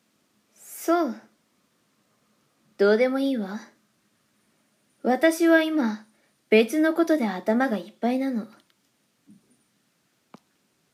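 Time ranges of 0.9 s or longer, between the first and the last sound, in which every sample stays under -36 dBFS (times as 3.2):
1.17–2.79
3.64–5.04
8.46–10.34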